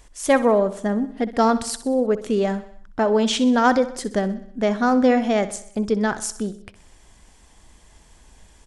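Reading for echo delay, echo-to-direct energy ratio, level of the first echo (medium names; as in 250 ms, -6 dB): 63 ms, -13.5 dB, -15.0 dB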